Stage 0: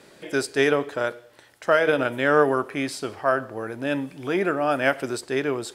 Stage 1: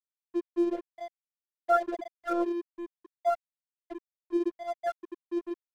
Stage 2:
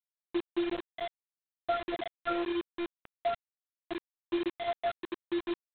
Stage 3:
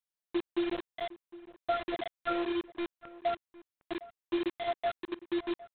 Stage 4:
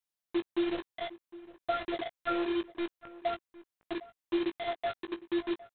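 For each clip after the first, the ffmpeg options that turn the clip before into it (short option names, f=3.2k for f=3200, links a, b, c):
-af "afftfilt=real='re*gte(hypot(re,im),0.562)':imag='im*gte(hypot(re,im),0.562)':win_size=1024:overlap=0.75,afftfilt=real='hypot(re,im)*cos(PI*b)':imag='0':win_size=512:overlap=0.75,aeval=exprs='sgn(val(0))*max(abs(val(0))-0.00631,0)':c=same"
-af "acompressor=threshold=-31dB:ratio=20,aresample=8000,acrusher=bits=6:mix=0:aa=0.000001,aresample=44100,volume=3.5dB"
-filter_complex "[0:a]asplit=2[a][b];[b]adelay=758,volume=-18dB,highshelf=f=4k:g=-17.1[c];[a][c]amix=inputs=2:normalize=0"
-filter_complex "[0:a]asplit=2[a][b];[b]adelay=18,volume=-8.5dB[c];[a][c]amix=inputs=2:normalize=0"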